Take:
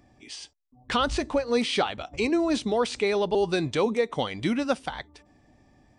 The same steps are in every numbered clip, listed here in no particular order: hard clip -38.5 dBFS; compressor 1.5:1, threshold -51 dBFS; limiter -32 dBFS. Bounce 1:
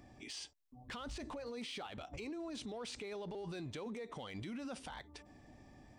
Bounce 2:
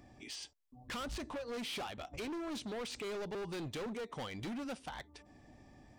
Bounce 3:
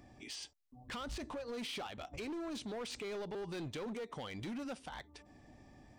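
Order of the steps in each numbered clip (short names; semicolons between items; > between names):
limiter > compressor > hard clip; compressor > hard clip > limiter; compressor > limiter > hard clip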